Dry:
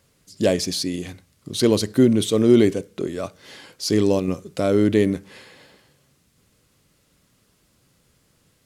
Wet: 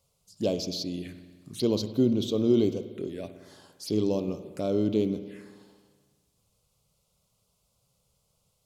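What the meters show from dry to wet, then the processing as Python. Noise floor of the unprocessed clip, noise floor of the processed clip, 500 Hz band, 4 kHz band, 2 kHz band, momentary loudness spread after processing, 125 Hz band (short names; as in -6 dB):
-63 dBFS, -73 dBFS, -8.0 dB, -9.0 dB, -17.0 dB, 18 LU, -8.0 dB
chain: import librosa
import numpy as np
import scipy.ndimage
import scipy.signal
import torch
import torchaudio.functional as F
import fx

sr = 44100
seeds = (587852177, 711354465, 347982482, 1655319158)

y = fx.peak_eq(x, sr, hz=93.0, db=-4.0, octaves=0.23)
y = fx.env_phaser(y, sr, low_hz=290.0, high_hz=1800.0, full_db=-21.5)
y = fx.rev_spring(y, sr, rt60_s=1.5, pass_ms=(56,), chirp_ms=45, drr_db=10.5)
y = y * 10.0 ** (-7.5 / 20.0)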